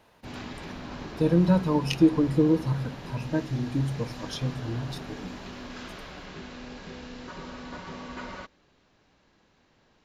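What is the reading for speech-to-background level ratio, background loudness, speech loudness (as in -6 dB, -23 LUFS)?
14.5 dB, -40.5 LUFS, -26.0 LUFS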